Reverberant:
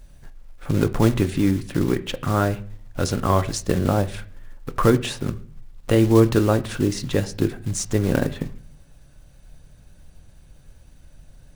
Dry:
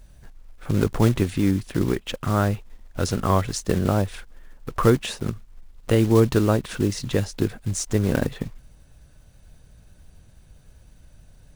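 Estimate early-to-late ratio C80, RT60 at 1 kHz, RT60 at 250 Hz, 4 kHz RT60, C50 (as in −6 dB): 21.5 dB, 0.40 s, 0.70 s, 0.45 s, 18.0 dB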